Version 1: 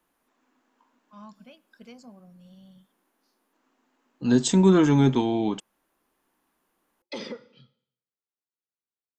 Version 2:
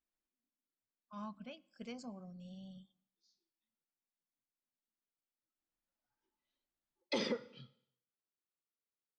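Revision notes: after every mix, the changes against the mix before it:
second voice: muted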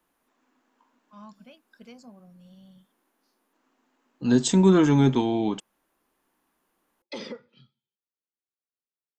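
second voice: unmuted; reverb: off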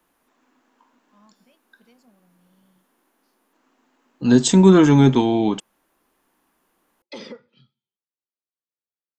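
first voice -9.5 dB; second voice +6.0 dB

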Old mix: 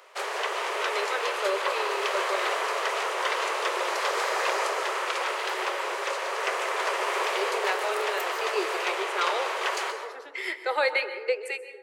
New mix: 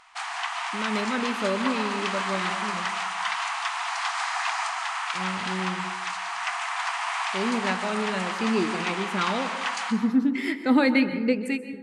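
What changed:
background: add brick-wall FIR band-pass 670–10000 Hz; master: remove steep high-pass 370 Hz 96 dB/oct

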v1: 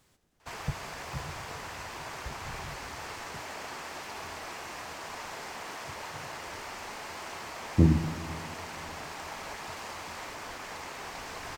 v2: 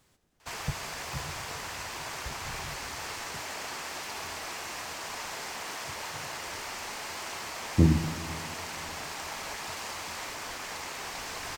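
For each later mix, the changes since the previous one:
background: add high shelf 2500 Hz +7.5 dB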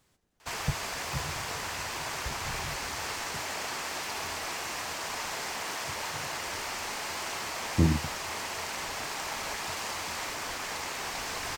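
background +4.0 dB; reverb: off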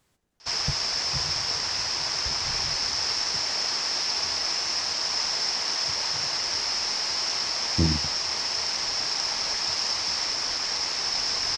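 background: add synth low-pass 5300 Hz, resonance Q 12

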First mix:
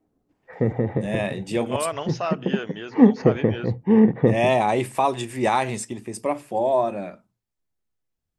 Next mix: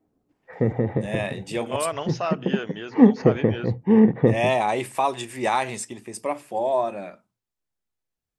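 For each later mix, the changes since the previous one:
first voice: add low shelf 380 Hz -8 dB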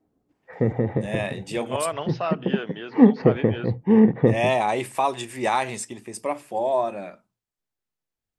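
second voice: add Chebyshev band-pass 140–4300 Hz, order 3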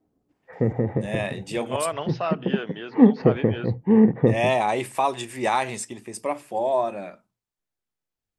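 background: add air absorption 320 m

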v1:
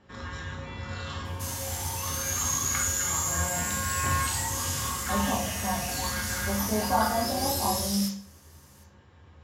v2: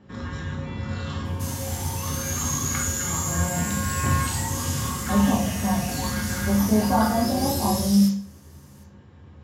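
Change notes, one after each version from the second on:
master: add bell 180 Hz +11 dB 2.4 oct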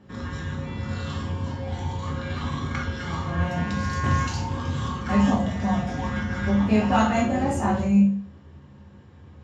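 speech: remove brick-wall FIR low-pass 1200 Hz; second sound: muted

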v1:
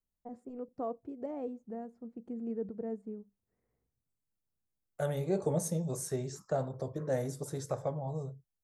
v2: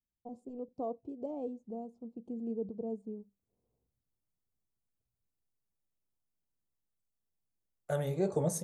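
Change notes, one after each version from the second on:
first voice: add Butterworth band-stop 1700 Hz, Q 0.82; second voice: entry +2.90 s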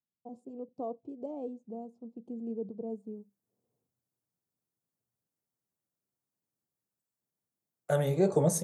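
second voice +5.5 dB; master: add HPF 110 Hz 24 dB/oct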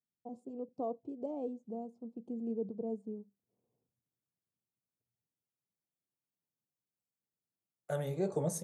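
second voice -8.0 dB

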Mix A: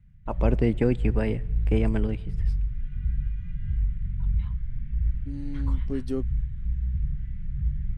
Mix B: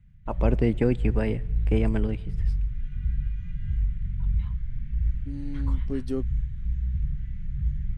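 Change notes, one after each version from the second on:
background: remove LPF 3100 Hz 6 dB/oct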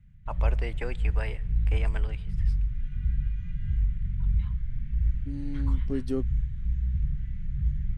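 first voice: add HPF 850 Hz 12 dB/oct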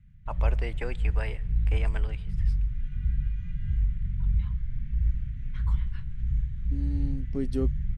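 second voice: entry +1.45 s

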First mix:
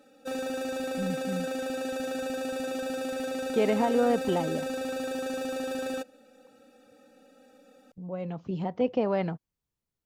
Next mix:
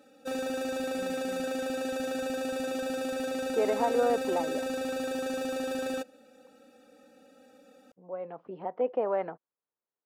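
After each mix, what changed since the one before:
speech: add Butterworth band-pass 820 Hz, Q 0.64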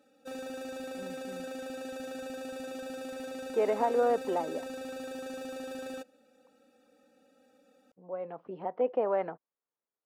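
background -7.5 dB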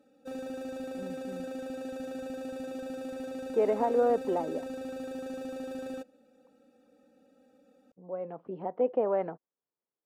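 master: add tilt shelf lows +5 dB, about 660 Hz

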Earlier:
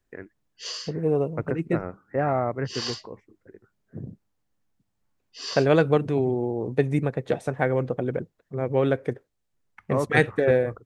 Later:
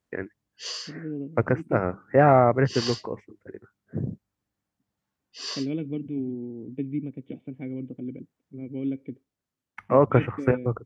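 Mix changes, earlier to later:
first voice +7.5 dB; second voice: add vocal tract filter i; master: add HPF 64 Hz

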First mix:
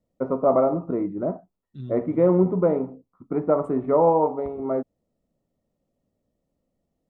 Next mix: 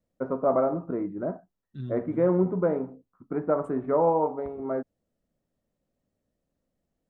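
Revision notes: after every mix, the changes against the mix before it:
first voice -4.5 dB; master: add bell 1600 Hz +12.5 dB 0.26 oct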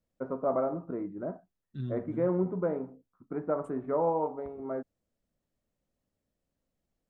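first voice -5.5 dB

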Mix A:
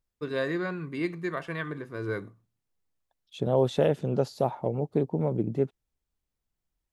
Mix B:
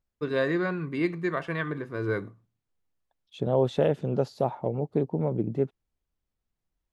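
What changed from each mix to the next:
first voice +3.5 dB; master: add high shelf 5800 Hz -9 dB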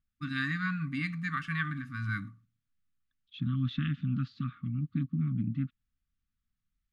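second voice: add Chebyshev low-pass 3600 Hz, order 3; master: add brick-wall FIR band-stop 290–1100 Hz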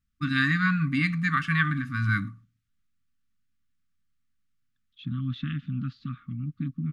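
first voice +8.5 dB; second voice: entry +1.65 s

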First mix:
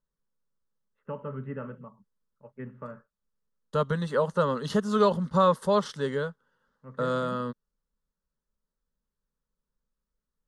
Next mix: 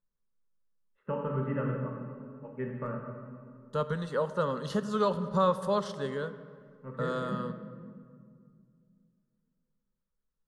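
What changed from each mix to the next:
second voice -5.5 dB; reverb: on, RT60 2.1 s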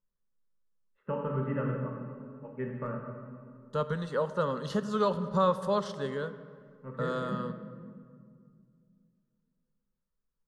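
master: add bell 10000 Hz -4 dB 0.49 oct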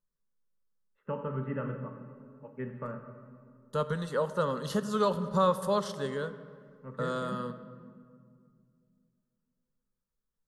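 first voice: send -6.5 dB; master: remove air absorption 69 m

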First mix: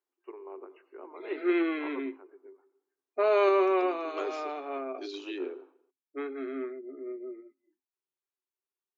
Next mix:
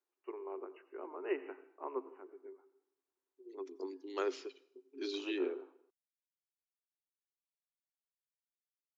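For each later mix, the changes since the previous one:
background: muted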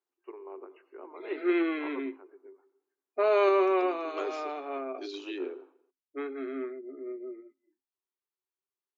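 background: unmuted

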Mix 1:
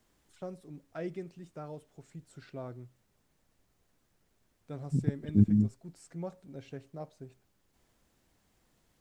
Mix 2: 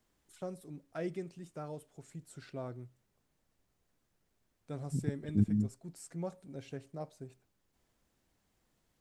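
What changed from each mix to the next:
first voice: remove air absorption 57 m; second voice -5.5 dB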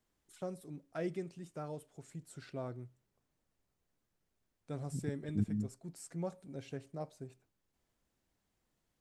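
second voice -5.5 dB

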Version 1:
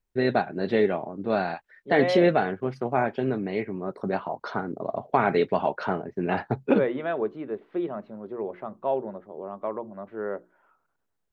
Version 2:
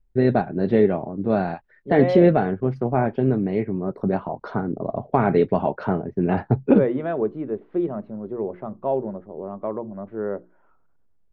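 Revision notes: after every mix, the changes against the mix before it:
master: add tilt -3.5 dB/oct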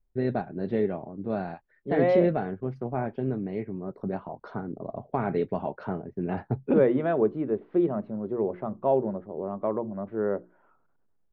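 first voice -9.0 dB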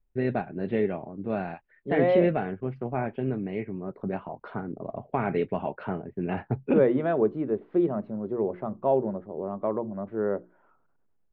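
first voice: add synth low-pass 2700 Hz, resonance Q 2.6

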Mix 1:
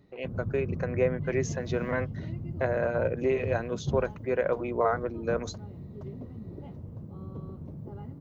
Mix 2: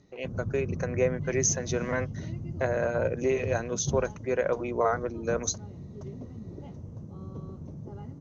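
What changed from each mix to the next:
master: add synth low-pass 6200 Hz, resonance Q 8.2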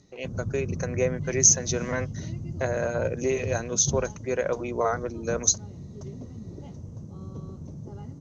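master: add tone controls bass +2 dB, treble +11 dB

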